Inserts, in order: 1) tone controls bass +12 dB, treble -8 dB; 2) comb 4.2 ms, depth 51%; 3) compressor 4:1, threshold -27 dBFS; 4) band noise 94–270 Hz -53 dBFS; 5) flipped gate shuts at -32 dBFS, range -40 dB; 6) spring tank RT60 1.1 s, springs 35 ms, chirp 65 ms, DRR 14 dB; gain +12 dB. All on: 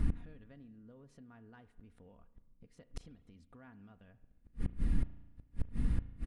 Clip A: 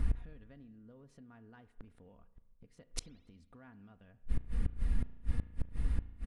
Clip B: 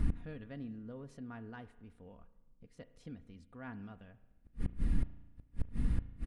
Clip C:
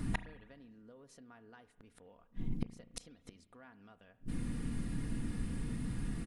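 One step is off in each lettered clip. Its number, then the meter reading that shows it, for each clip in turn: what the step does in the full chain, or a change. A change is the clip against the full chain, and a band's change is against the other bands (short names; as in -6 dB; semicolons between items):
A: 4, 250 Hz band -4.0 dB; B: 3, momentary loudness spread change -2 LU; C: 1, 125 Hz band -6.0 dB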